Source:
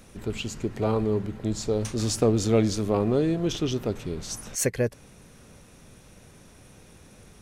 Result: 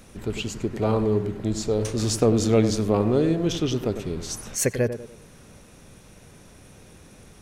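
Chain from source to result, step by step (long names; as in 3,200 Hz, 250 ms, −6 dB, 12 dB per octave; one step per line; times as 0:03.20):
tape delay 96 ms, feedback 44%, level −8 dB, low-pass 1,100 Hz
level +2 dB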